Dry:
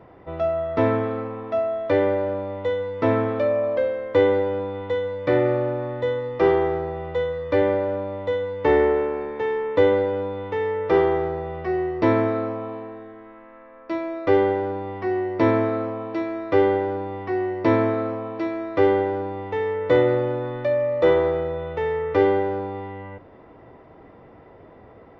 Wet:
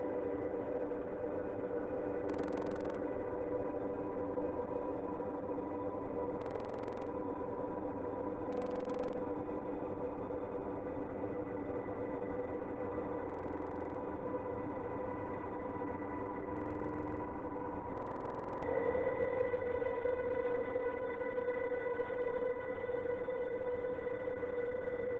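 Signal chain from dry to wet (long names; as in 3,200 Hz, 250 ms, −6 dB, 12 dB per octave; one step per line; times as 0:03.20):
high-pass filter 120 Hz 12 dB per octave
low-pass that shuts in the quiet parts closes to 1,700 Hz, open at −14.5 dBFS
low-pass filter 2,200 Hz 24 dB per octave
dynamic equaliser 1,700 Hz, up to +4 dB, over −50 dBFS, Q 7.3
comb filter 3.2 ms, depth 33%
downward compressor 4 to 1, threshold −31 dBFS, peak gain reduction 15 dB
extreme stretch with random phases 49×, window 0.05 s, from 0:04.52
slap from a distant wall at 200 metres, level −13 dB
buffer that repeats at 0:02.25/0:06.37/0:08.48/0:13.25/0:16.52/0:17.93, samples 2,048, times 14
level −5 dB
Opus 10 kbit/s 48,000 Hz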